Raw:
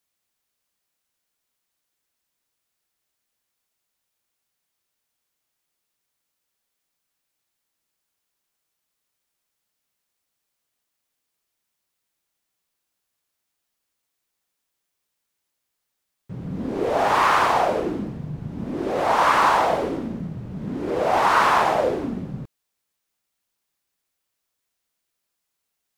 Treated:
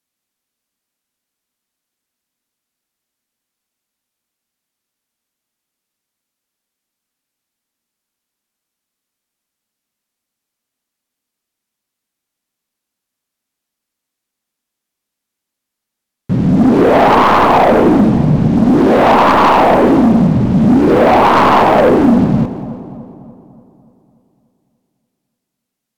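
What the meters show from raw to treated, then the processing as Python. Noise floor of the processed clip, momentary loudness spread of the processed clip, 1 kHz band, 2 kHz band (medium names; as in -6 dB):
-80 dBFS, 6 LU, +9.5 dB, +7.0 dB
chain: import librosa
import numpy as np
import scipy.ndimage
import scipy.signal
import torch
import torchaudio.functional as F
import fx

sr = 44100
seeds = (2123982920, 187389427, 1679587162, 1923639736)

p1 = fx.tracing_dist(x, sr, depth_ms=0.064)
p2 = fx.env_lowpass_down(p1, sr, base_hz=970.0, full_db=-15.0)
p3 = fx.peak_eq(p2, sr, hz=240.0, db=9.5, octaves=0.74)
p4 = fx.rider(p3, sr, range_db=10, speed_s=0.5)
p5 = p3 + (p4 * librosa.db_to_amplitude(0.0))
p6 = fx.leveller(p5, sr, passes=3)
p7 = p6 + fx.echo_split(p6, sr, split_hz=990.0, low_ms=291, high_ms=171, feedback_pct=52, wet_db=-14.0, dry=0)
y = p7 * librosa.db_to_amplitude(-1.0)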